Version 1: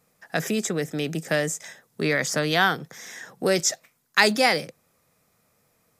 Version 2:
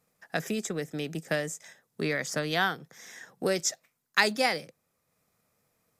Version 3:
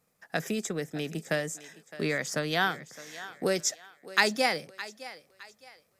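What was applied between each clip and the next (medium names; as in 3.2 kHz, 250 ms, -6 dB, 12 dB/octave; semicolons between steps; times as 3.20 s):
transient shaper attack +3 dB, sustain -3 dB; trim -7 dB
thinning echo 613 ms, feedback 35%, high-pass 360 Hz, level -15.5 dB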